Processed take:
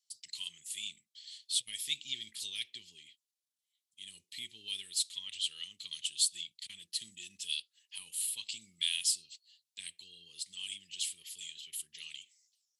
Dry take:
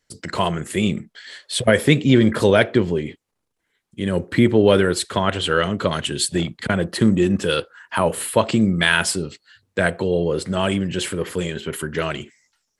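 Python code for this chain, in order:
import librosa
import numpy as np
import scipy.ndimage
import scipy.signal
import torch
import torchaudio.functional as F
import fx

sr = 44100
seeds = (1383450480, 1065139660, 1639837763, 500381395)

y = scipy.signal.sosfilt(scipy.signal.cheby2(4, 40, 1600.0, 'highpass', fs=sr, output='sos'), x)
y = y * librosa.db_to_amplitude(-6.5)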